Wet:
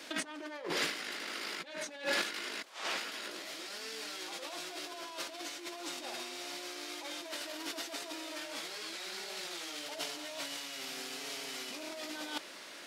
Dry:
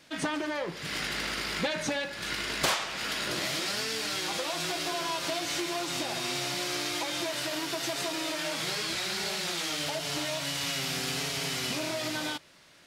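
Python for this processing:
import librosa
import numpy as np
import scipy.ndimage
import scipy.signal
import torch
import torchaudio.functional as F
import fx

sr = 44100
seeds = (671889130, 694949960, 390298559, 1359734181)

y = scipy.signal.sosfilt(scipy.signal.butter(4, 260.0, 'highpass', fs=sr, output='sos'), x)
y = fx.low_shelf(y, sr, hz=380.0, db=2.0)
y = fx.over_compress(y, sr, threshold_db=-39.0, ratio=-0.5)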